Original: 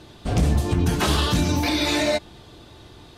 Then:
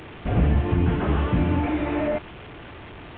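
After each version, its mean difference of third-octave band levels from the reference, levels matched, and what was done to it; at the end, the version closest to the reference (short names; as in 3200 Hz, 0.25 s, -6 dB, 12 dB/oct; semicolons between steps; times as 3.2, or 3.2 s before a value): 9.5 dB: delta modulation 16 kbps, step -34 dBFS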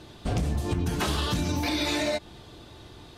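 2.5 dB: compressor, threshold -22 dBFS, peak gain reduction 8 dB; gain -1.5 dB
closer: second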